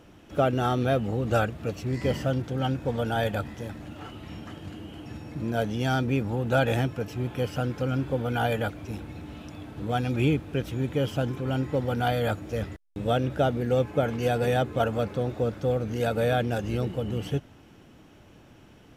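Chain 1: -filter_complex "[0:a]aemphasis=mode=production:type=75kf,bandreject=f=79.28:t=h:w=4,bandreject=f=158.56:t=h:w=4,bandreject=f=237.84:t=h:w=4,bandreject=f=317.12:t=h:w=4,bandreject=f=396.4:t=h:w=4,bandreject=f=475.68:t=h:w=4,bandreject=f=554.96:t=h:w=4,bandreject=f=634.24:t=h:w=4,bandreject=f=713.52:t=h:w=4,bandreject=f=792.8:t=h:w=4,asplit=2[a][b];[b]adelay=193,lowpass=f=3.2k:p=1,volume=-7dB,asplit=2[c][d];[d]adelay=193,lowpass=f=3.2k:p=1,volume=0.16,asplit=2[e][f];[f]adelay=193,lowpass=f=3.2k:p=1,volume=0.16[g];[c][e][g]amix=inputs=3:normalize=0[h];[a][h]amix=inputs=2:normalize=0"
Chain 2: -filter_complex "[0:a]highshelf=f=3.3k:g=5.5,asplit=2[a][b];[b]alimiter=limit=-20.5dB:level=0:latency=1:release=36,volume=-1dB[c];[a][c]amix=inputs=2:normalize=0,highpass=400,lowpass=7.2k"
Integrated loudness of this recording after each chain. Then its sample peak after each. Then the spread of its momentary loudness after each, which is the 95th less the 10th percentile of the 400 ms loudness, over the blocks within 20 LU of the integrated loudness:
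-26.5, -27.0 LUFS; -8.0, -9.0 dBFS; 15, 15 LU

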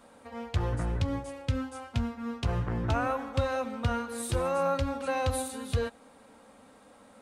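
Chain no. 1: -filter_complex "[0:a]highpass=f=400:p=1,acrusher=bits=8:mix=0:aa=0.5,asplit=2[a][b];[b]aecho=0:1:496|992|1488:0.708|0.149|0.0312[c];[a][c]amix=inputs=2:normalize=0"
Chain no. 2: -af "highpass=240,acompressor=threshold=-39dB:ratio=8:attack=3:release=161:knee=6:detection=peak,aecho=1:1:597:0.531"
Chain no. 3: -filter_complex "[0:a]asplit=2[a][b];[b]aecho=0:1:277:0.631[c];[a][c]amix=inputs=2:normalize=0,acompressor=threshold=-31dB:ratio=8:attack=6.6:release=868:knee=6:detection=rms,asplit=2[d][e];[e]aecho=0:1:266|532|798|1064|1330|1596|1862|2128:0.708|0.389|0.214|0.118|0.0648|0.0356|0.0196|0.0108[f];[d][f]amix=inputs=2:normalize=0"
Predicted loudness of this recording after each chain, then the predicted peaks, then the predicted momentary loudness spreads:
-33.5, -43.0, -37.0 LUFS; -18.0, -26.0, -21.5 dBFS; 14, 8, 9 LU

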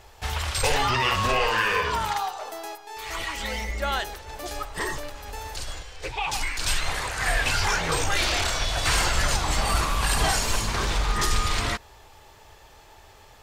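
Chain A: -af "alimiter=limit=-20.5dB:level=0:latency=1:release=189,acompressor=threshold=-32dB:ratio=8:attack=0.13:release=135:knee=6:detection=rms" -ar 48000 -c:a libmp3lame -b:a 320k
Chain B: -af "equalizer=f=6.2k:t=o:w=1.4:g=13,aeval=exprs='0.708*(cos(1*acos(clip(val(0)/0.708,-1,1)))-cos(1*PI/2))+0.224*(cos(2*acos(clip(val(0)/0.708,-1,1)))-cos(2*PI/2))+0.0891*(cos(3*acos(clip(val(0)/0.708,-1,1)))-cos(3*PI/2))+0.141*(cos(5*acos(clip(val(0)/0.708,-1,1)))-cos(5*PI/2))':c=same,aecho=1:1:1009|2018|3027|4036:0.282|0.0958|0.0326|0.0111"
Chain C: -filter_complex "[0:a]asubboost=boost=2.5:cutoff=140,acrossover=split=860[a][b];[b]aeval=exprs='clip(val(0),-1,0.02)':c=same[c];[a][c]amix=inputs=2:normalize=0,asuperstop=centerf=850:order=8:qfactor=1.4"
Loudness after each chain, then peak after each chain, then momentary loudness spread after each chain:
-39.5, -16.5, -25.0 LUFS; -30.0, -1.5, -3.5 dBFS; 8, 13, 14 LU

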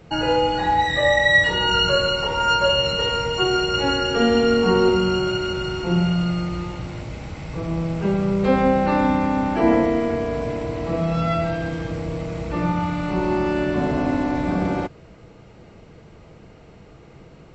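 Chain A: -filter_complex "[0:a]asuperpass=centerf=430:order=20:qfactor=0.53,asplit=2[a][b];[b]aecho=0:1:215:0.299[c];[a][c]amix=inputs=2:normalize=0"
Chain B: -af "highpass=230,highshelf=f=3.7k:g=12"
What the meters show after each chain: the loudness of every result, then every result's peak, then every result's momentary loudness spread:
-23.0, -19.0 LUFS; -6.0, -3.0 dBFS; 14, 16 LU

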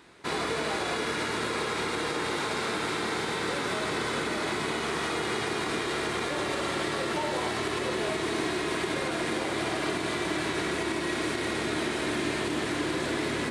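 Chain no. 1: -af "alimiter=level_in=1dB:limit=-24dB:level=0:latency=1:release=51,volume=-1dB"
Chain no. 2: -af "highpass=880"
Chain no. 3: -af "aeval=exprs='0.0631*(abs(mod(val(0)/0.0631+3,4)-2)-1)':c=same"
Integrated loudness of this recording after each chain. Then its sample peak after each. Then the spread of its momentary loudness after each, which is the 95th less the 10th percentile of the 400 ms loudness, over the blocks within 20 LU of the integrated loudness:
-33.0, -32.0, -30.0 LUFS; -25.0, -19.5, -24.0 dBFS; 0, 1, 0 LU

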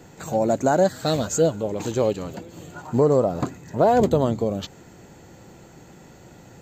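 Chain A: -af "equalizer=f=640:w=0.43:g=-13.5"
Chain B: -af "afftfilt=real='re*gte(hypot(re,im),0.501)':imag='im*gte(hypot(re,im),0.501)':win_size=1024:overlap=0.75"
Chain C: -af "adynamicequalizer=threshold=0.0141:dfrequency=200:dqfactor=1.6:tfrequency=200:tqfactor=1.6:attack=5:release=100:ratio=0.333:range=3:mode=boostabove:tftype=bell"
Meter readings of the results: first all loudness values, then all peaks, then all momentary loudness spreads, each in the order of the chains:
-31.0, -23.5, -20.5 LUFS; -15.5, -8.5, -4.0 dBFS; 12, 13, 14 LU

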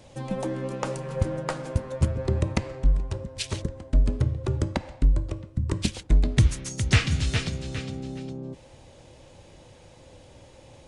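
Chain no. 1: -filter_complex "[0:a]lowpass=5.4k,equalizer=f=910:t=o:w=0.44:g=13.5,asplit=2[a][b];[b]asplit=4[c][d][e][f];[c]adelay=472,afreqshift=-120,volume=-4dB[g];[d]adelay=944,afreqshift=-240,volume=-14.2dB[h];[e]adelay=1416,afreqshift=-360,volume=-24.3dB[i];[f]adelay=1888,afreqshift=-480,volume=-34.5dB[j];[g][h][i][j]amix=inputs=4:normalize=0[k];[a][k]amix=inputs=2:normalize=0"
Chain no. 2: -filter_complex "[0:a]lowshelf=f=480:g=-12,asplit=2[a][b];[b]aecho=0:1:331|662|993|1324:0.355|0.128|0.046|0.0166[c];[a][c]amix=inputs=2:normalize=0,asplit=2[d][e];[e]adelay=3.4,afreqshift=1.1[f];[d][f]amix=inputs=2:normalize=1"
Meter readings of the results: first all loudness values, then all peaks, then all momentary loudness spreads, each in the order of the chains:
-26.0, -37.5 LUFS; -5.0, -14.0 dBFS; 12, 14 LU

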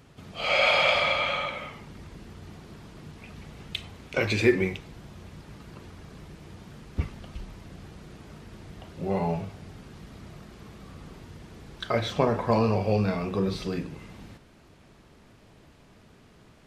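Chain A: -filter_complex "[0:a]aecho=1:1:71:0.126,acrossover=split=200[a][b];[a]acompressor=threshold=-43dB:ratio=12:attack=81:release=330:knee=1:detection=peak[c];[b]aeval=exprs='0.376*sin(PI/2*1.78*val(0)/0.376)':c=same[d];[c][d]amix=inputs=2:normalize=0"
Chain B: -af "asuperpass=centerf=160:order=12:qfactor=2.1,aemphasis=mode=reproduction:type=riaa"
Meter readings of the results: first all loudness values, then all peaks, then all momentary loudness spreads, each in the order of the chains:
-19.0, -32.0 LUFS; -8.0, -12.5 dBFS; 22, 18 LU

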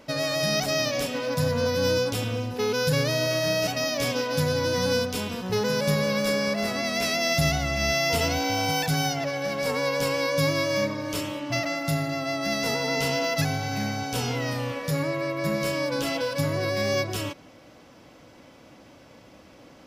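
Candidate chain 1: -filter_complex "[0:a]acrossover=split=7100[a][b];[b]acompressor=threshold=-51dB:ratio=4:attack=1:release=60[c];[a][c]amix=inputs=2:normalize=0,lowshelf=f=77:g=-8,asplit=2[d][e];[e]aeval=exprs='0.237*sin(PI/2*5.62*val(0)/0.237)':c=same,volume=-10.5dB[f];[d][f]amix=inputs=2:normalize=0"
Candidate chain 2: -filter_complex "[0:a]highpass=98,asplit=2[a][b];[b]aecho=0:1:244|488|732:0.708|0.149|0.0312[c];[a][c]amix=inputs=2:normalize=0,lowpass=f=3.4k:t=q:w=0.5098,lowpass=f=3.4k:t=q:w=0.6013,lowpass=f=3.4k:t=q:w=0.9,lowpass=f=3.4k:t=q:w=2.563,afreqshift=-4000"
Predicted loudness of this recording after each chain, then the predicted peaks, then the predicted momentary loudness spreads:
-21.0, -21.5 LUFS; -11.0, -11.0 dBFS; 19, 5 LU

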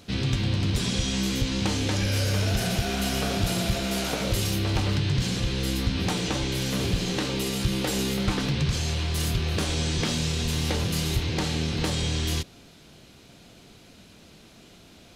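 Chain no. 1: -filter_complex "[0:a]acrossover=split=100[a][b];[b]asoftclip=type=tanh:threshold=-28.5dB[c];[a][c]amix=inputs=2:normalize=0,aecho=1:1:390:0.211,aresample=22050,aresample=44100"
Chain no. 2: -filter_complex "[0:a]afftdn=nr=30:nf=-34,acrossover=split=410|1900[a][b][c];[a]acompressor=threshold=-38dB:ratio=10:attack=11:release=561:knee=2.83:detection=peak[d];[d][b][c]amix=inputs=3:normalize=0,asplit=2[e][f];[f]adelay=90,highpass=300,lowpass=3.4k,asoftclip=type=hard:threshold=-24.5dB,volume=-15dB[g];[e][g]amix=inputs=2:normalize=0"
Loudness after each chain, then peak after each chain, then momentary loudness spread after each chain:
-29.5, -33.0 LUFS; -15.5, -15.0 dBFS; 3, 4 LU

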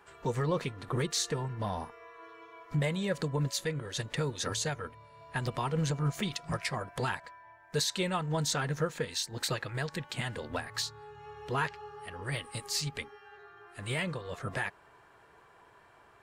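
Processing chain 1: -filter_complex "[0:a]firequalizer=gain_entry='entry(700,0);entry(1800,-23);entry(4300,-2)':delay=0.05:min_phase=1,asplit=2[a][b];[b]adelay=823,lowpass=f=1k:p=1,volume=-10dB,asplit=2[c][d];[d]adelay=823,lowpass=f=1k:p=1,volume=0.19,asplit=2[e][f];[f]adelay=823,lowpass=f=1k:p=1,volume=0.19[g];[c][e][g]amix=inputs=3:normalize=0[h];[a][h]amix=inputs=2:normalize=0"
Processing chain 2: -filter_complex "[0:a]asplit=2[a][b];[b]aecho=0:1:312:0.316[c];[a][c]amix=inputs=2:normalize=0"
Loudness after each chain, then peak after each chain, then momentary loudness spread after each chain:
-35.5, -34.0 LUFS; -19.5, -18.5 dBFS; 15, 13 LU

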